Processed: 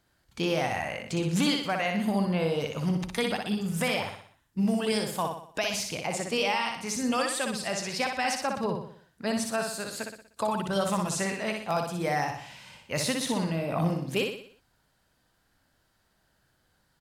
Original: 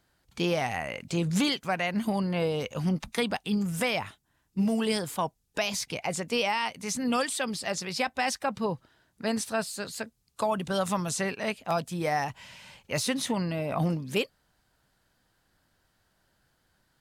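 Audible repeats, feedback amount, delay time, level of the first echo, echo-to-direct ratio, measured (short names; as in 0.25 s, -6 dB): 5, 47%, 61 ms, -4.5 dB, -3.5 dB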